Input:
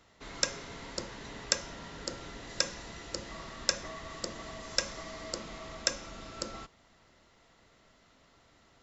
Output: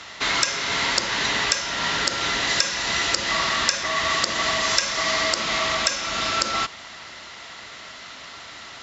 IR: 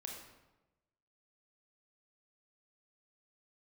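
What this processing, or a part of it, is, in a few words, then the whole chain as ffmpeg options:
mastering chain: -af "highpass=55,equalizer=frequency=490:width_type=o:width=0.21:gain=-4,acompressor=threshold=-43dB:ratio=2,asoftclip=type=tanh:threshold=-19dB,tiltshelf=frequency=770:gain=-8.5,alimiter=level_in=19.5dB:limit=-1dB:release=50:level=0:latency=1,lowpass=5800,volume=1.5dB"

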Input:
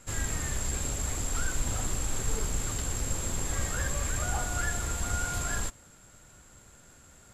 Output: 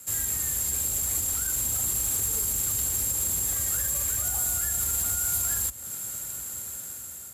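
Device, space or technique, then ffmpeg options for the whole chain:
FM broadcast chain: -filter_complex "[0:a]highpass=frequency=54:width=0.5412,highpass=frequency=54:width=1.3066,dynaudnorm=framelen=560:gausssize=5:maxgain=12dB,acrossover=split=110|5100[link_01][link_02][link_03];[link_01]acompressor=threshold=-34dB:ratio=4[link_04];[link_02]acompressor=threshold=-38dB:ratio=4[link_05];[link_03]acompressor=threshold=-38dB:ratio=4[link_06];[link_04][link_05][link_06]amix=inputs=3:normalize=0,aemphasis=mode=production:type=50fm,alimiter=limit=-20dB:level=0:latency=1:release=32,asoftclip=type=hard:threshold=-23.5dB,lowpass=frequency=15000:width=0.5412,lowpass=frequency=15000:width=1.3066,aemphasis=mode=production:type=50fm,equalizer=frequency=6500:width_type=o:width=0.87:gain=-4,volume=-3.5dB"

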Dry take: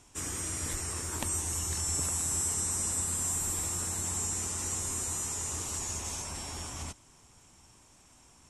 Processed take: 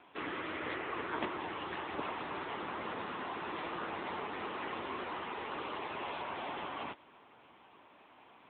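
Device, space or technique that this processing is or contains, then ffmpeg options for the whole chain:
telephone: -af "highpass=360,lowpass=3100,volume=8dB" -ar 8000 -c:a libopencore_amrnb -b:a 10200

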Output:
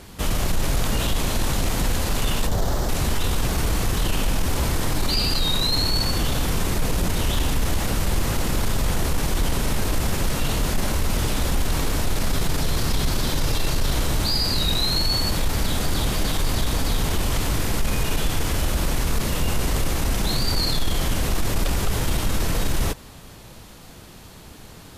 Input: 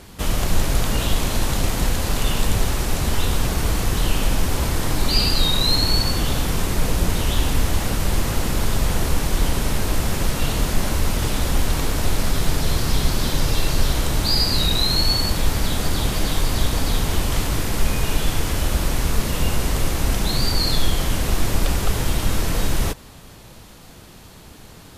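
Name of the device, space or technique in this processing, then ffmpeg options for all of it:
soft clipper into limiter: -filter_complex "[0:a]asoftclip=type=tanh:threshold=-6dB,alimiter=limit=-13.5dB:level=0:latency=1:release=13,asettb=1/sr,asplit=3[link_01][link_02][link_03];[link_01]atrim=end=2.474[link_04];[link_02]atrim=start=2.47:end=2.89,asetpts=PTS-STARTPTS,afade=type=in:duration=0.004:curve=qsin,afade=type=out:start_time=0.416:duration=0.004:curve=qsin,equalizer=frequency=630:width_type=o:width=0.67:gain=6,equalizer=frequency=2500:width_type=o:width=0.67:gain=-11,equalizer=frequency=10000:width_type=o:width=0.67:gain=-8[link_05];[link_03]atrim=start=2.886[link_06];[link_04][link_05]acrossfade=duration=0.004:curve1=hsin:curve2=qsin[link_07];[link_07][link_06]acrossfade=duration=0.004:curve1=qsin:curve2=hsin"

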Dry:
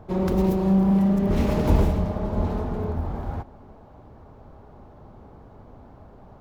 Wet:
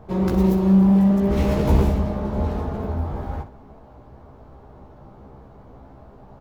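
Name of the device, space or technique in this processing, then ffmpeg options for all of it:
slapback doubling: -filter_complex "[0:a]asplit=3[link_01][link_02][link_03];[link_02]adelay=15,volume=-3dB[link_04];[link_03]adelay=63,volume=-11.5dB[link_05];[link_01][link_04][link_05]amix=inputs=3:normalize=0"

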